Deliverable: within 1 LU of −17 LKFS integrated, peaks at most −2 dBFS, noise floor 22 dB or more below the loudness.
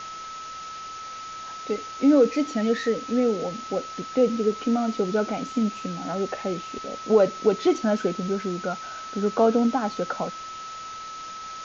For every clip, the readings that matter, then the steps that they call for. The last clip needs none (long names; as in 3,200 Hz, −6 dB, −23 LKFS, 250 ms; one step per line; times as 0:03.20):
interfering tone 1,300 Hz; level of the tone −35 dBFS; background noise floor −37 dBFS; target noise floor −47 dBFS; integrated loudness −25.0 LKFS; sample peak −8.0 dBFS; target loudness −17.0 LKFS
→ notch filter 1,300 Hz, Q 30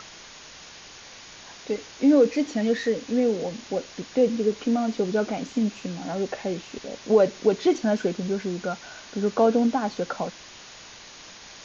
interfering tone none found; background noise floor −45 dBFS; target noise floor −47 dBFS
→ noise reduction from a noise print 6 dB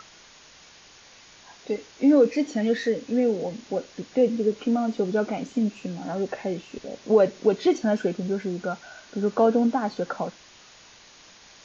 background noise floor −51 dBFS; integrated loudness −25.0 LKFS; sample peak −7.5 dBFS; target loudness −17.0 LKFS
→ level +8 dB
brickwall limiter −2 dBFS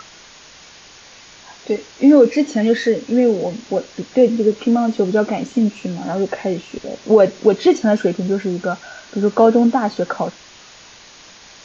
integrated loudness −17.0 LKFS; sample peak −2.0 dBFS; background noise floor −43 dBFS